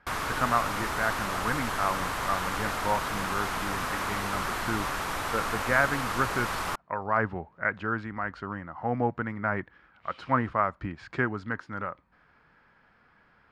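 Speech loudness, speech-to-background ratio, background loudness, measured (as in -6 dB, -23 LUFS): -31.5 LUFS, -0.5 dB, -31.0 LUFS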